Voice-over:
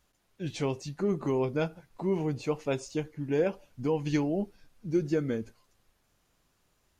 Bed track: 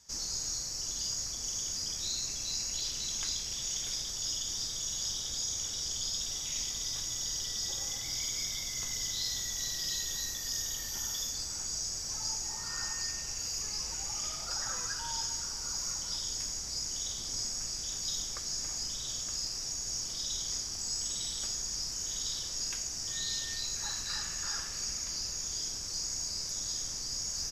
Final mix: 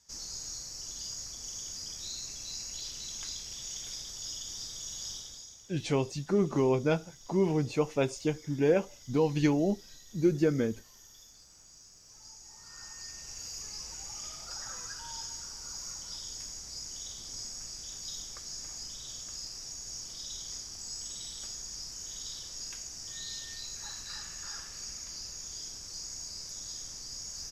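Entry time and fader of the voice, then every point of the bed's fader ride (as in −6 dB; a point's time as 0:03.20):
5.30 s, +2.0 dB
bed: 0:05.15 −5 dB
0:05.64 −19.5 dB
0:11.95 −19.5 dB
0:13.38 −5.5 dB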